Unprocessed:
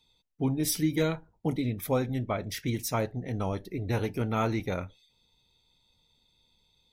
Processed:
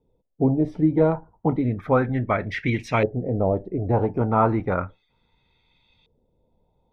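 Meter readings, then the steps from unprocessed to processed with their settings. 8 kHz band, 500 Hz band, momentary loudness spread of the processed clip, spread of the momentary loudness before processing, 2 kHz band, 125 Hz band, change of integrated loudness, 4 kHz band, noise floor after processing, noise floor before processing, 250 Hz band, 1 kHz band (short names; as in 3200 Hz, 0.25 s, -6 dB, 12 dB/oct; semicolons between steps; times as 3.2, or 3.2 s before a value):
under -15 dB, +9.0 dB, 6 LU, 6 LU, +7.5 dB, +6.5 dB, +7.5 dB, -5.0 dB, -70 dBFS, -71 dBFS, +7.5 dB, +10.0 dB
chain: LFO low-pass saw up 0.33 Hz 470–2700 Hz; gain +6.5 dB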